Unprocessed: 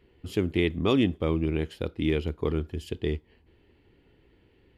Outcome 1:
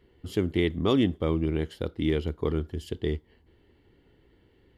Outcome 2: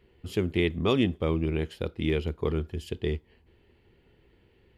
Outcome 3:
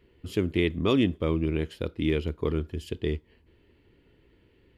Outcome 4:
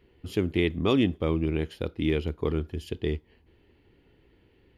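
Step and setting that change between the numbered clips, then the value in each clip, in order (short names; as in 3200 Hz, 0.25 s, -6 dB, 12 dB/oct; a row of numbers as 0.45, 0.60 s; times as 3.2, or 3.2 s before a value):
notch, frequency: 2500, 290, 780, 7900 Hz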